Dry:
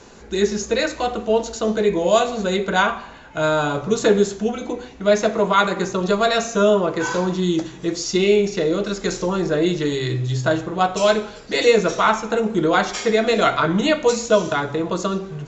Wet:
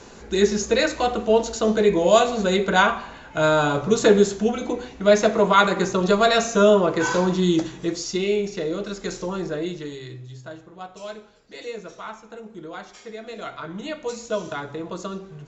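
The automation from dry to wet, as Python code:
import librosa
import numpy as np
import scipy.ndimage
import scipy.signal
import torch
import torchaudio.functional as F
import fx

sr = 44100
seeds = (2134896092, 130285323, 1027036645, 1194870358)

y = fx.gain(x, sr, db=fx.line((7.67, 0.5), (8.22, -6.5), (9.42, -6.5), (10.46, -19.0), (13.2, -19.0), (14.48, -9.0)))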